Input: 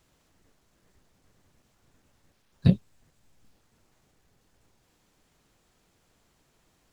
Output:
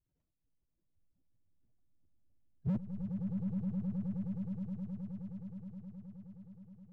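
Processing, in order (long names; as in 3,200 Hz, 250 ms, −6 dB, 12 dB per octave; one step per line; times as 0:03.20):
expanding power law on the bin magnitudes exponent 2.6
downward expander −51 dBFS
leveller curve on the samples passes 1
transient designer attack −5 dB, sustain +10 dB
in parallel at −5 dB: soft clipping −26.5 dBFS, distortion −8 dB
on the sum: volume swells 537 ms
on a send: echo that builds up and dies away 105 ms, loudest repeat 8, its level −11 dB
on the sum: slew-rate limiting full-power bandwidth 2.2 Hz
level +9 dB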